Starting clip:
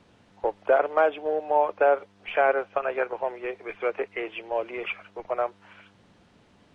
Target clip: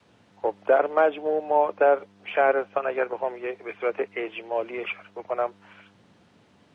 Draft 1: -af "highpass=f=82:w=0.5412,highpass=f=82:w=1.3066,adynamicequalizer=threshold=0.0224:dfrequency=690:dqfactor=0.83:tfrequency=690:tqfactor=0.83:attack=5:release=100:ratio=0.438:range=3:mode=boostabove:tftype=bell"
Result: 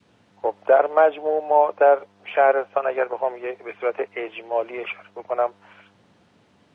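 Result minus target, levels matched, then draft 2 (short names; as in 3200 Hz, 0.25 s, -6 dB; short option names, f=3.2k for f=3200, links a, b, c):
250 Hz band -5.0 dB
-af "highpass=f=82:w=0.5412,highpass=f=82:w=1.3066,adynamicequalizer=threshold=0.0224:dfrequency=220:dqfactor=0.83:tfrequency=220:tqfactor=0.83:attack=5:release=100:ratio=0.438:range=3:mode=boostabove:tftype=bell"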